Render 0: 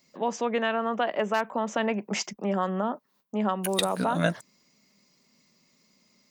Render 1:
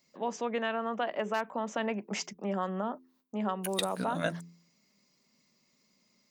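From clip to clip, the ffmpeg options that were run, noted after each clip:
ffmpeg -i in.wav -af "bandreject=frequency=85.53:width_type=h:width=4,bandreject=frequency=171.06:width_type=h:width=4,bandreject=frequency=256.59:width_type=h:width=4,bandreject=frequency=342.12:width_type=h:width=4,bandreject=frequency=427.65:width_type=h:width=4,volume=-5.5dB" out.wav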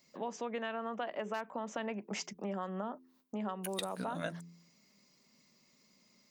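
ffmpeg -i in.wav -af "acompressor=threshold=-44dB:ratio=2,volume=2.5dB" out.wav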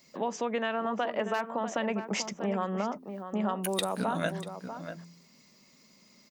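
ffmpeg -i in.wav -filter_complex "[0:a]asplit=2[link_01][link_02];[link_02]adelay=641.4,volume=-9dB,highshelf=frequency=4000:gain=-14.4[link_03];[link_01][link_03]amix=inputs=2:normalize=0,volume=7.5dB" out.wav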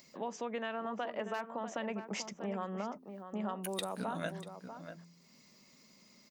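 ffmpeg -i in.wav -af "acompressor=mode=upward:threshold=-47dB:ratio=2.5,volume=-7.5dB" out.wav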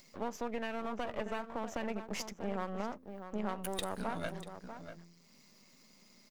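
ffmpeg -i in.wav -af "aeval=exprs='if(lt(val(0),0),0.251*val(0),val(0))':channel_layout=same,volume=3dB" out.wav

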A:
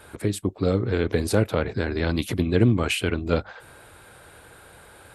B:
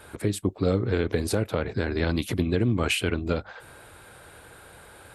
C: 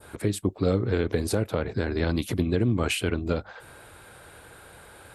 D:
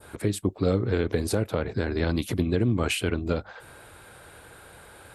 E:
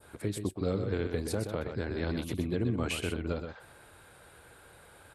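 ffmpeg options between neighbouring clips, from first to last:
ffmpeg -i in.wav -af "alimiter=limit=-12.5dB:level=0:latency=1:release=239" out.wav
ffmpeg -i in.wav -af "adynamicequalizer=threshold=0.00708:dfrequency=2400:dqfactor=0.81:tfrequency=2400:tqfactor=0.81:attack=5:release=100:ratio=0.375:range=1.5:mode=cutabove:tftype=bell" out.wav
ffmpeg -i in.wav -af anull out.wav
ffmpeg -i in.wav -af "aecho=1:1:125:0.422,volume=-7.5dB" out.wav

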